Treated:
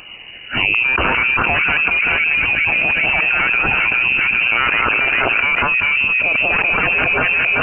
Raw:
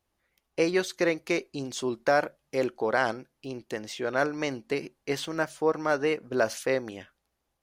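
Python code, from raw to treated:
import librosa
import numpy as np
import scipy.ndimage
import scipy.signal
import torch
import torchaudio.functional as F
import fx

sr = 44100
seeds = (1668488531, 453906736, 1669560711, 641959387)

p1 = x[::-1].copy()
p2 = fx.dynamic_eq(p1, sr, hz=560.0, q=1.5, threshold_db=-37.0, ratio=4.0, max_db=6)
p3 = (np.mod(10.0 ** (15.0 / 20.0) * p2 + 1.0, 2.0) - 1.0) / 10.0 ** (15.0 / 20.0)
p4 = p2 + (p3 * 10.0 ** (-4.0 / 20.0))
p5 = fx.filter_lfo_notch(p4, sr, shape='sine', hz=0.55, low_hz=400.0, high_hz=1800.0, q=1.4)
p6 = fx.echo_split(p5, sr, split_hz=1400.0, low_ms=407, high_ms=192, feedback_pct=52, wet_db=-8.5)
p7 = fx.freq_invert(p6, sr, carrier_hz=2900)
y = fx.env_flatten(p7, sr, amount_pct=100)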